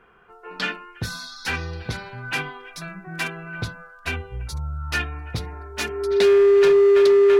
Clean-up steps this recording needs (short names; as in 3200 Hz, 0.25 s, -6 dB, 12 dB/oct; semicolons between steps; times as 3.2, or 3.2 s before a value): clip repair -11.5 dBFS; notch 400 Hz, Q 30